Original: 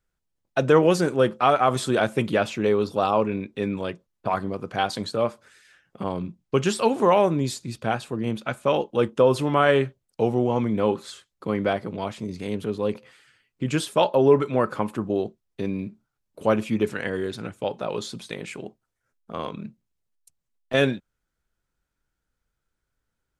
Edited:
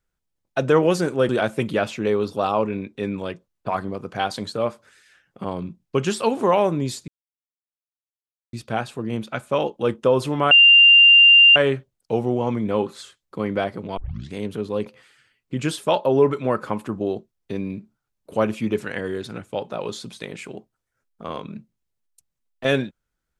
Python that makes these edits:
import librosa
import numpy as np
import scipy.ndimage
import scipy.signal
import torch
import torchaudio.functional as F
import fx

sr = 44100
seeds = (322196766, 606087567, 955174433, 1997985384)

y = fx.edit(x, sr, fx.cut(start_s=1.29, length_s=0.59),
    fx.insert_silence(at_s=7.67, length_s=1.45),
    fx.insert_tone(at_s=9.65, length_s=1.05, hz=2790.0, db=-7.5),
    fx.tape_start(start_s=12.06, length_s=0.36), tone=tone)